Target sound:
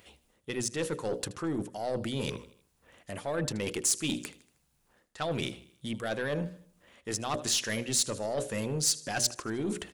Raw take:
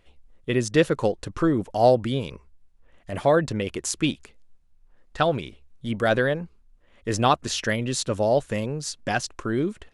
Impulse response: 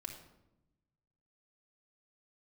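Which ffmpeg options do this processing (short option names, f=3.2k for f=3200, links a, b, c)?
-af "highpass=100,bandreject=f=60:t=h:w=6,bandreject=f=120:t=h:w=6,bandreject=f=180:t=h:w=6,bandreject=f=240:t=h:w=6,bandreject=f=300:t=h:w=6,bandreject=f=360:t=h:w=6,bandreject=f=420:t=h:w=6,bandreject=f=480:t=h:w=6,bandreject=f=540:t=h:w=6,bandreject=f=600:t=h:w=6,areverse,acompressor=threshold=-33dB:ratio=12,areverse,aecho=1:1:78|156|234|312:0.106|0.053|0.0265|0.0132,aeval=exprs='(tanh(25.1*val(0)+0.2)-tanh(0.2))/25.1':c=same,crystalizer=i=2:c=0,volume=5dB"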